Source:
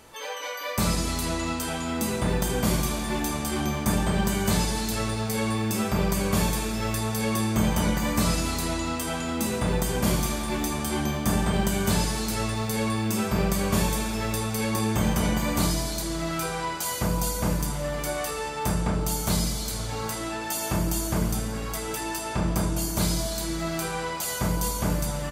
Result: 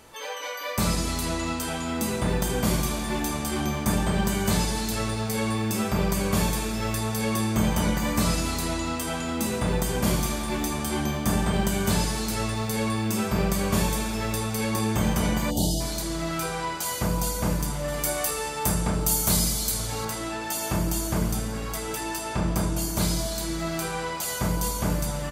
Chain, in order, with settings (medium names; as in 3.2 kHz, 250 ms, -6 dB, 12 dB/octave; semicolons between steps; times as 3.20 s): 15.50–15.81 s: time-frequency box 890–2800 Hz -29 dB; 17.88–20.05 s: treble shelf 7 kHz +11 dB